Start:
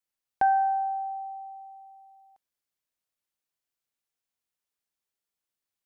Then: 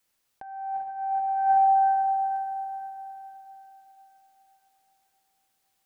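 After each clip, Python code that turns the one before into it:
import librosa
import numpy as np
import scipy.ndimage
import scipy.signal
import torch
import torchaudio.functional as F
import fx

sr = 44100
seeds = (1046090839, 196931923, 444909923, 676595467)

y = fx.echo_diffused(x, sr, ms=451, feedback_pct=46, wet_db=-7.5)
y = fx.over_compress(y, sr, threshold_db=-32.0, ratio=-0.5)
y = y * librosa.db_to_amplitude(8.5)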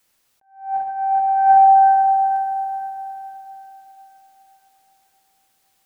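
y = fx.attack_slew(x, sr, db_per_s=140.0)
y = y * librosa.db_to_amplitude(9.0)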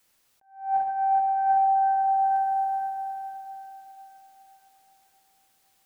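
y = fx.rider(x, sr, range_db=5, speed_s=0.5)
y = y * librosa.db_to_amplitude(-6.5)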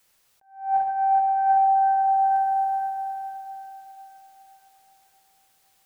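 y = fx.peak_eq(x, sr, hz=270.0, db=-6.5, octaves=0.46)
y = y * librosa.db_to_amplitude(2.5)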